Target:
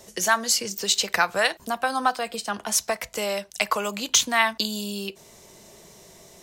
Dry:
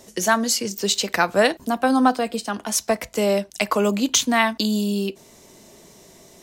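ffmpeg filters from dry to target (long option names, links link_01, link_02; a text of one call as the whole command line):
ffmpeg -i in.wav -filter_complex "[0:a]equalizer=frequency=270:width=2.7:gain=-8.5,acrossover=split=780|1500[link_01][link_02][link_03];[link_01]acompressor=threshold=-31dB:ratio=6[link_04];[link_04][link_02][link_03]amix=inputs=3:normalize=0" out.wav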